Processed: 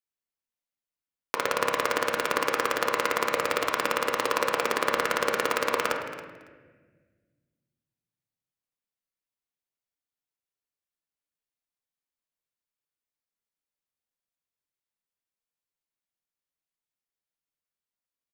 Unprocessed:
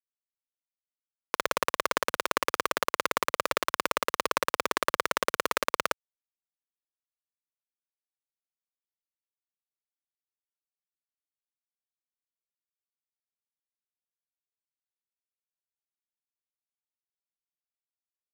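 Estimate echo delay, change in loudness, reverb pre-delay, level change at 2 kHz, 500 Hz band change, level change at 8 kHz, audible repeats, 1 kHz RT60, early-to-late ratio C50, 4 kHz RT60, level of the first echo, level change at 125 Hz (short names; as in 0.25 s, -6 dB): 0.277 s, +2.0 dB, 7 ms, +2.5 dB, +4.0 dB, 0.0 dB, 2, 1.2 s, 5.0 dB, 1.1 s, -15.5 dB, +3.0 dB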